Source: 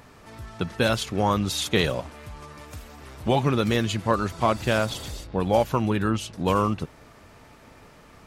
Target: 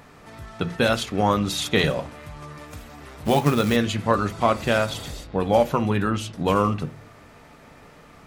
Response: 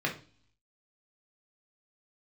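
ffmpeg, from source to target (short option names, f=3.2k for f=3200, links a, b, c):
-filter_complex "[0:a]asplit=2[a][b];[b]highpass=52[c];[1:a]atrim=start_sample=2205,lowpass=7.7k[d];[c][d]afir=irnorm=-1:irlink=0,volume=-14dB[e];[a][e]amix=inputs=2:normalize=0,asplit=3[f][g][h];[f]afade=t=out:st=3.24:d=0.02[i];[g]acrusher=bits=4:mode=log:mix=0:aa=0.000001,afade=t=in:st=3.24:d=0.02,afade=t=out:st=3.75:d=0.02[j];[h]afade=t=in:st=3.75:d=0.02[k];[i][j][k]amix=inputs=3:normalize=0"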